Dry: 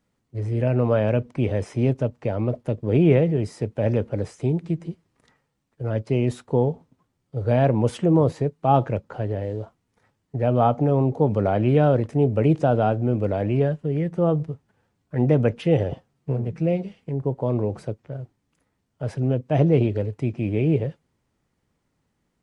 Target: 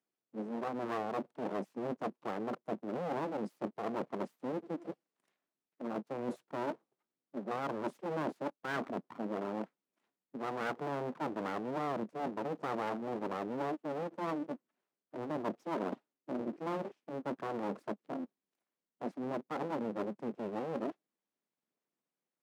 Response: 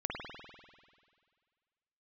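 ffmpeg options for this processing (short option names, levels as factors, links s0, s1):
-af "afwtdn=0.0355,aphaser=in_gain=1:out_gain=1:delay=2.9:decay=0.27:speed=1.1:type=sinusoidal,areverse,acompressor=threshold=0.0355:ratio=6,areverse,aeval=exprs='abs(val(0))':c=same,highpass=f=180:w=0.5412,highpass=f=180:w=1.3066"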